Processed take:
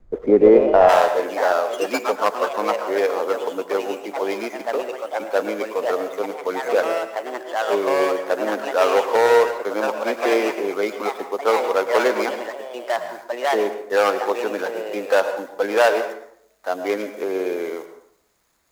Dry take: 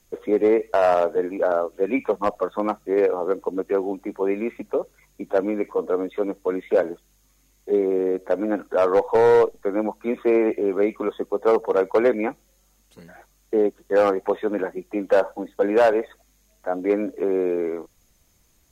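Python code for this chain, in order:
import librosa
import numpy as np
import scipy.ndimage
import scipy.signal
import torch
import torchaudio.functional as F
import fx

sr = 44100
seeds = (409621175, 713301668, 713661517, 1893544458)

y = scipy.signal.medfilt(x, 15)
y = fx.low_shelf(y, sr, hz=350.0, db=-10.0)
y = fx.echo_pitch(y, sr, ms=181, semitones=3, count=2, db_per_echo=-6.0)
y = fx.tilt_eq(y, sr, slope=fx.steps((0.0, -4.0), (0.88, 2.5)))
y = fx.rev_plate(y, sr, seeds[0], rt60_s=0.65, hf_ratio=0.65, predelay_ms=95, drr_db=9.5)
y = y * 10.0 ** (5.0 / 20.0)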